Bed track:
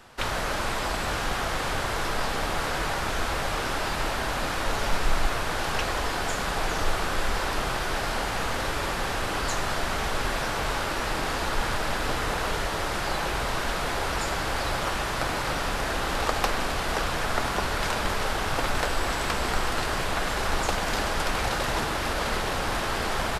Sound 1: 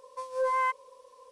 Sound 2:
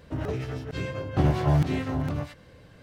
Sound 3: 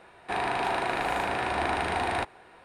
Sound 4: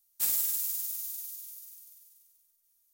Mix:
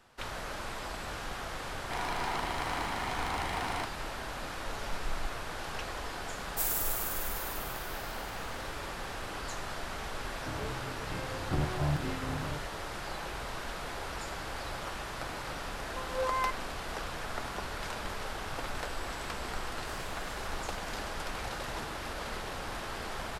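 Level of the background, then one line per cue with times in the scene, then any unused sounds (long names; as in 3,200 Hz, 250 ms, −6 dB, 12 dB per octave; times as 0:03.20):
bed track −11 dB
0:01.61: mix in 3 −5.5 dB + lower of the sound and its delayed copy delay 0.97 ms
0:06.37: mix in 4 −4 dB
0:10.34: mix in 2 −9.5 dB
0:15.79: mix in 1 −5 dB
0:19.66: mix in 4 −12.5 dB + low-pass filter 5,400 Hz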